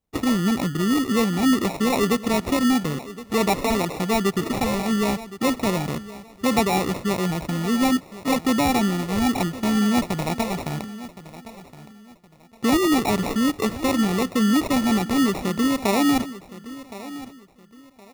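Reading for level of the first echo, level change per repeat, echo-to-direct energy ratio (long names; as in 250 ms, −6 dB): −16.0 dB, −11.5 dB, −15.5 dB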